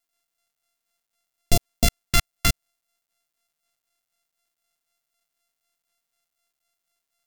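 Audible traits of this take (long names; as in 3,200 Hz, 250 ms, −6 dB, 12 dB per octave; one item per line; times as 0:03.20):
a buzz of ramps at a fixed pitch in blocks of 64 samples
phaser sweep stages 2, 4 Hz, lowest notch 480–1,500 Hz
a quantiser's noise floor 12 bits, dither none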